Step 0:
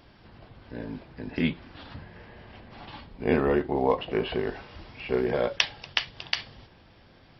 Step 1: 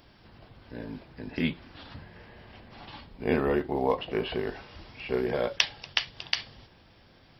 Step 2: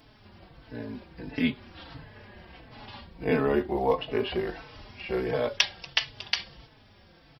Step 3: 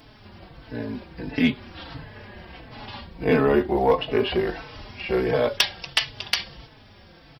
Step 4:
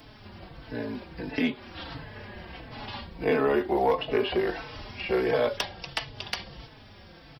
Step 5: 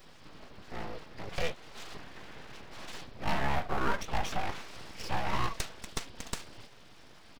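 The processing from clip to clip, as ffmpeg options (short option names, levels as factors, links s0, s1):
-af "highshelf=f=5400:g=8.5,volume=0.75"
-filter_complex "[0:a]asplit=2[s0][s1];[s1]adelay=4.1,afreqshift=-1.5[s2];[s0][s2]amix=inputs=2:normalize=1,volume=1.58"
-af "asoftclip=type=tanh:threshold=0.2,volume=2.11"
-filter_complex "[0:a]acrossover=split=280|1100[s0][s1][s2];[s0]acompressor=threshold=0.0112:ratio=4[s3];[s1]acompressor=threshold=0.0794:ratio=4[s4];[s2]acompressor=threshold=0.0251:ratio=4[s5];[s3][s4][s5]amix=inputs=3:normalize=0"
-af "aeval=exprs='abs(val(0))':c=same,volume=0.708"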